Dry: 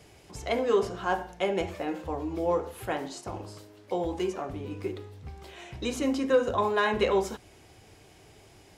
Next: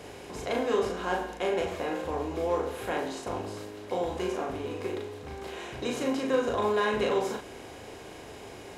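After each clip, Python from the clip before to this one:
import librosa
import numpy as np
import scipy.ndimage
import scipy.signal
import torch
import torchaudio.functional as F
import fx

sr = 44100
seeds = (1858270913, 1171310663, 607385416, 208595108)

y = fx.bin_compress(x, sr, power=0.6)
y = fx.doubler(y, sr, ms=38.0, db=-3.0)
y = F.gain(torch.from_numpy(y), -6.5).numpy()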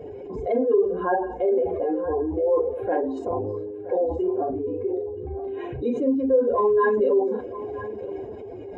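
y = fx.spec_expand(x, sr, power=2.6)
y = y + 10.0 ** (-15.0 / 20.0) * np.pad(y, (int(972 * sr / 1000.0), 0))[:len(y)]
y = F.gain(torch.from_numpy(y), 7.5).numpy()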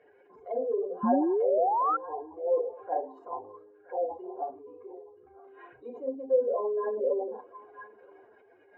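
y = fx.auto_wah(x, sr, base_hz=600.0, top_hz=1900.0, q=4.4, full_db=-18.0, direction='down')
y = fx.spec_paint(y, sr, seeds[0], shape='rise', start_s=1.03, length_s=0.94, low_hz=210.0, high_hz=1400.0, level_db=-26.0)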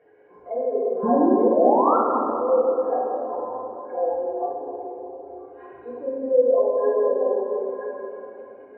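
y = fx.lowpass(x, sr, hz=1700.0, slope=6)
y = fx.room_shoebox(y, sr, seeds[1], volume_m3=180.0, walls='hard', distance_m=0.72)
y = F.gain(torch.from_numpy(y), 2.5).numpy()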